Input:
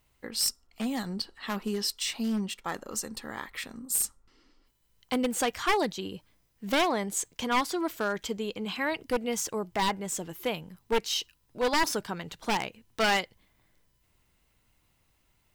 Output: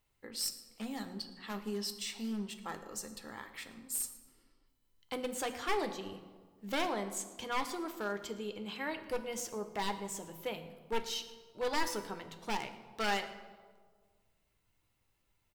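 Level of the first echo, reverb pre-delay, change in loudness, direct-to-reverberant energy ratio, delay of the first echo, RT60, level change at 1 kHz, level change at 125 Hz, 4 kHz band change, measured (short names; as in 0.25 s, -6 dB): -19.5 dB, 10 ms, -8.0 dB, 6.5 dB, 0.112 s, 1.6 s, -7.5 dB, -8.5 dB, -8.5 dB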